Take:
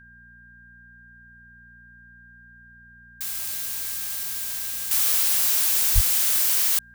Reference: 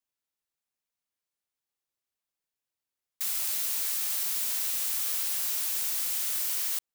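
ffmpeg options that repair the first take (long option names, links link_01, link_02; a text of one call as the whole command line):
ffmpeg -i in.wav -filter_complex "[0:a]bandreject=frequency=59.3:width_type=h:width=4,bandreject=frequency=118.6:width_type=h:width=4,bandreject=frequency=177.9:width_type=h:width=4,bandreject=frequency=237.2:width_type=h:width=4,bandreject=frequency=1600:width=30,asplit=3[link_01][link_02][link_03];[link_01]afade=type=out:start_time=5.94:duration=0.02[link_04];[link_02]highpass=frequency=140:width=0.5412,highpass=frequency=140:width=1.3066,afade=type=in:start_time=5.94:duration=0.02,afade=type=out:start_time=6.06:duration=0.02[link_05];[link_03]afade=type=in:start_time=6.06:duration=0.02[link_06];[link_04][link_05][link_06]amix=inputs=3:normalize=0,asetnsamples=nb_out_samples=441:pad=0,asendcmd='4.91 volume volume -9dB',volume=0dB" out.wav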